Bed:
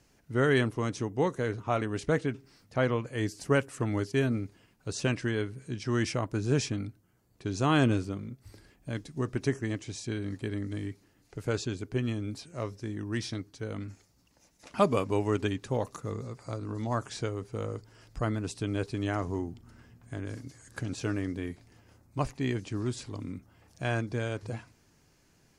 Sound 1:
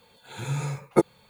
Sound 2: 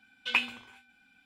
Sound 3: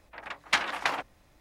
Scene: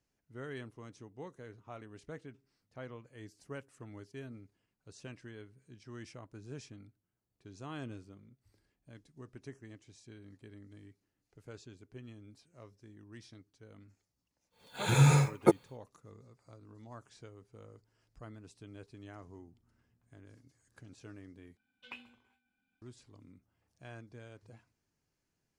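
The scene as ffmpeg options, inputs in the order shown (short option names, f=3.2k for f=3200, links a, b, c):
-filter_complex "[0:a]volume=-19dB[a];[1:a]dynaudnorm=f=100:g=5:m=16dB[b];[2:a]tiltshelf=f=820:g=5.5[c];[a]asplit=2[d][e];[d]atrim=end=21.574[f];[c]atrim=end=1.25,asetpts=PTS-STARTPTS,volume=-17.5dB[g];[e]atrim=start=22.816[h];[b]atrim=end=1.29,asetpts=PTS-STARTPTS,volume=-8.5dB,afade=t=in:d=0.1,afade=t=out:st=1.19:d=0.1,adelay=14500[i];[f][g]acrossfade=d=0.004:c1=hsin:c2=hsin[j];[j][h]acrossfade=d=0.004:c1=hsin:c2=hsin[k];[k][i]amix=inputs=2:normalize=0"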